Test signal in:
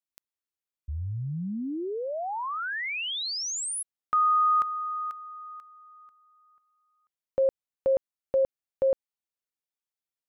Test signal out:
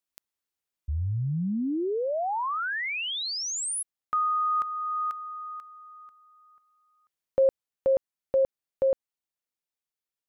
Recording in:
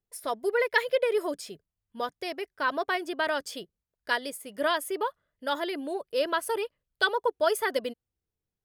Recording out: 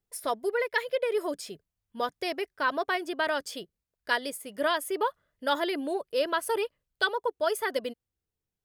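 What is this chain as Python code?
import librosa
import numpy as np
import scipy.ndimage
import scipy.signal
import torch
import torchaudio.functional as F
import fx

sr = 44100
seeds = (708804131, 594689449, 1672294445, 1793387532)

y = fx.rider(x, sr, range_db=4, speed_s=0.5)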